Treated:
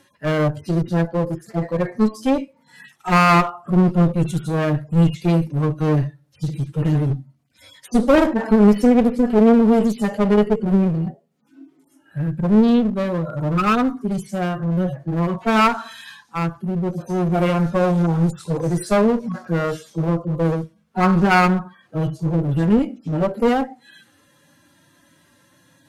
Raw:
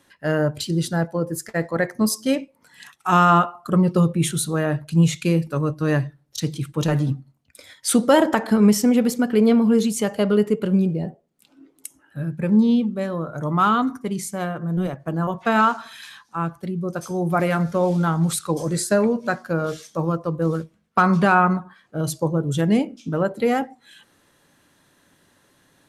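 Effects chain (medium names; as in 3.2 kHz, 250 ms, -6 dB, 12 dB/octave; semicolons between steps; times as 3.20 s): harmonic-percussive separation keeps harmonic; one-sided clip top -27 dBFS; trim +6 dB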